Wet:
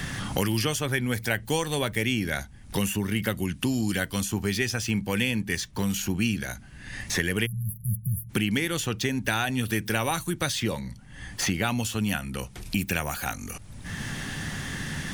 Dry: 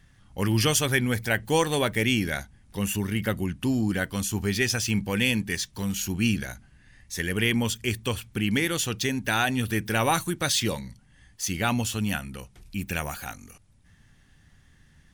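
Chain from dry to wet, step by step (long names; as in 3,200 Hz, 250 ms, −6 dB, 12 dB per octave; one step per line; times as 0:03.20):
time-frequency box erased 0:07.46–0:08.29, 210–10,000 Hz
multiband upward and downward compressor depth 100%
level −1.5 dB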